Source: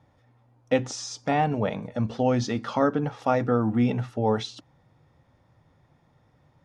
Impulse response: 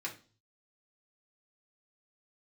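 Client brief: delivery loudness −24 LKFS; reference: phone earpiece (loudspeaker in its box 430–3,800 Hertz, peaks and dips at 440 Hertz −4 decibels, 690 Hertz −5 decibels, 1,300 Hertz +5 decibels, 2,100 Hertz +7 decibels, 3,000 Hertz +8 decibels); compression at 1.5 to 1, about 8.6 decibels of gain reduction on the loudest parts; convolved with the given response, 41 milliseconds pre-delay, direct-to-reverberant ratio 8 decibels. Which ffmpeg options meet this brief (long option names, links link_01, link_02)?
-filter_complex "[0:a]acompressor=threshold=-42dB:ratio=1.5,asplit=2[link_01][link_02];[1:a]atrim=start_sample=2205,adelay=41[link_03];[link_02][link_03]afir=irnorm=-1:irlink=0,volume=-9.5dB[link_04];[link_01][link_04]amix=inputs=2:normalize=0,highpass=430,equalizer=frequency=440:width_type=q:width=4:gain=-4,equalizer=frequency=690:width_type=q:width=4:gain=-5,equalizer=frequency=1300:width_type=q:width=4:gain=5,equalizer=frequency=2100:width_type=q:width=4:gain=7,equalizer=frequency=3000:width_type=q:width=4:gain=8,lowpass=frequency=3800:width=0.5412,lowpass=frequency=3800:width=1.3066,volume=13dB"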